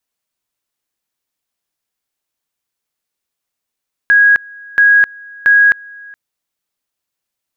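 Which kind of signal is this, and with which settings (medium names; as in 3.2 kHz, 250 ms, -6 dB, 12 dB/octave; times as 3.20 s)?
two-level tone 1.65 kHz -5 dBFS, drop 26 dB, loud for 0.26 s, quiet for 0.42 s, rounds 3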